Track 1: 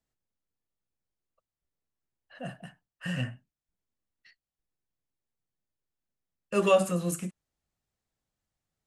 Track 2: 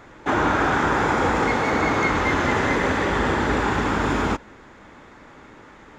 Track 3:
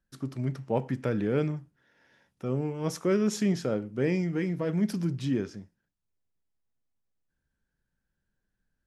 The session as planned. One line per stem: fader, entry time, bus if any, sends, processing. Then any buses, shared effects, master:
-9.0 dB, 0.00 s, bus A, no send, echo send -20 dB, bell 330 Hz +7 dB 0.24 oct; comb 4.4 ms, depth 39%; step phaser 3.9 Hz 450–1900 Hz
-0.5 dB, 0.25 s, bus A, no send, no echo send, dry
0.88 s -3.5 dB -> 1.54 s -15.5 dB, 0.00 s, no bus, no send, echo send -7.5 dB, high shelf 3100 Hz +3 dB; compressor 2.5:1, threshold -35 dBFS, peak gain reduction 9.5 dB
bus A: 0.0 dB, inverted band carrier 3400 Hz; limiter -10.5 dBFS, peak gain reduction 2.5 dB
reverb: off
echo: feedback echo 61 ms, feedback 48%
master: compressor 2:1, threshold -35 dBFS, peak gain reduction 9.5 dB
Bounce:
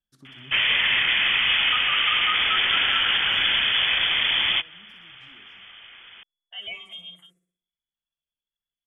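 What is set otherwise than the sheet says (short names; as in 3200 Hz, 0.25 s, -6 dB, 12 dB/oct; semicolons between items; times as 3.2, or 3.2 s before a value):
stem 3 -3.5 dB -> -13.0 dB; master: missing compressor 2:1, threshold -35 dBFS, peak gain reduction 9.5 dB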